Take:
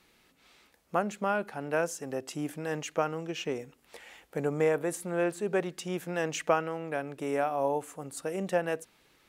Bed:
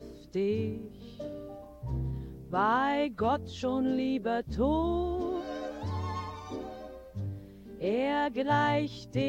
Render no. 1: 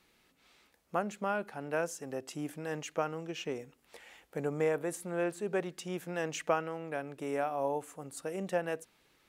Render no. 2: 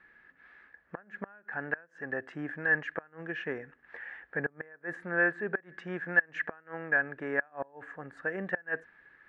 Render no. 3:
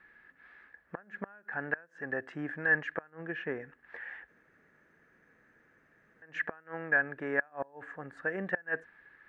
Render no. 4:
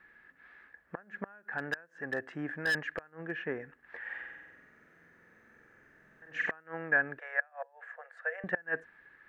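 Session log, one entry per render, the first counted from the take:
trim -4 dB
inverted gate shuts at -23 dBFS, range -28 dB; resonant low-pass 1.7 kHz, resonance Q 15
3.10–3.60 s: low-pass 2.6 kHz 6 dB/octave; 4.28–6.22 s: room tone
1.58–3.31 s: hard clipper -26 dBFS; 4.00–6.51 s: flutter echo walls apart 8 m, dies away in 1.2 s; 7.19–8.44 s: rippled Chebyshev high-pass 470 Hz, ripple 6 dB

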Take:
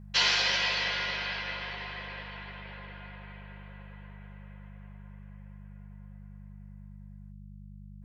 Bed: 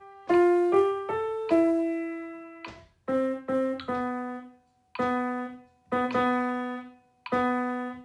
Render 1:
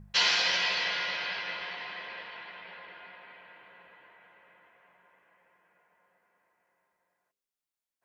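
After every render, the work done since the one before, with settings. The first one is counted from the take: de-hum 50 Hz, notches 11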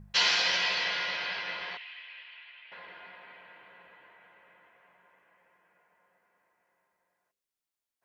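1.77–2.72 s: band-pass filter 2.7 kHz, Q 2.8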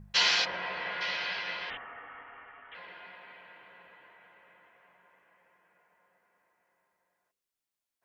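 0.44–1.00 s: low-pass 1.2 kHz -> 1.9 kHz; 1.70–2.75 s: frequency inversion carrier 3.8 kHz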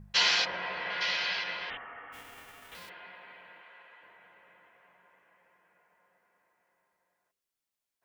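0.90–1.44 s: treble shelf 4.1 kHz +10 dB; 2.12–2.88 s: formants flattened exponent 0.3; 3.61–4.03 s: frequency weighting A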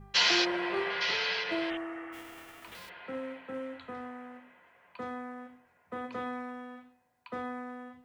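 add bed -12 dB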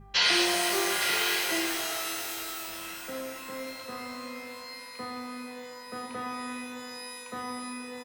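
doubling 37 ms -10.5 dB; pitch-shifted reverb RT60 3.5 s, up +12 st, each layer -2 dB, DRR 3 dB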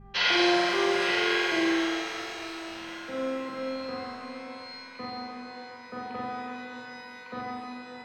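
distance through air 180 m; flutter echo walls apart 7.8 m, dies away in 1.2 s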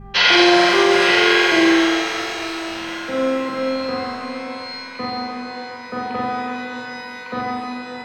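trim +11.5 dB; peak limiter -3 dBFS, peak gain reduction 2.5 dB

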